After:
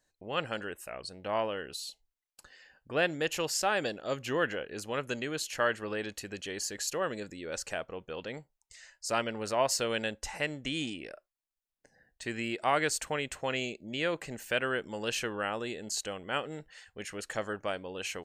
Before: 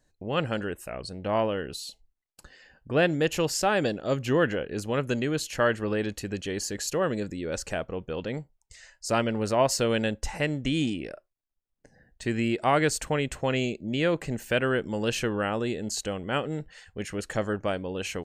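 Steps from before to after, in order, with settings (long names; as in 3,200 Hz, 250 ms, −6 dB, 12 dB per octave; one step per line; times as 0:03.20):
low-shelf EQ 390 Hz −12 dB
level −2 dB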